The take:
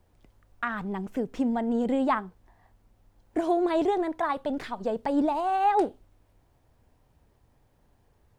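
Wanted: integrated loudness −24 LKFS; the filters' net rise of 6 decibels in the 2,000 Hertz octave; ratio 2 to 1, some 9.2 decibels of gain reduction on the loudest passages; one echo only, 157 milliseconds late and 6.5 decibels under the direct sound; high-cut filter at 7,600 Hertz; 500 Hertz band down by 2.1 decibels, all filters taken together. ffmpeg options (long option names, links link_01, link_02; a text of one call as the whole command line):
ffmpeg -i in.wav -af "lowpass=7600,equalizer=frequency=500:width_type=o:gain=-3.5,equalizer=frequency=2000:width_type=o:gain=8,acompressor=threshold=-37dB:ratio=2,aecho=1:1:157:0.473,volume=10.5dB" out.wav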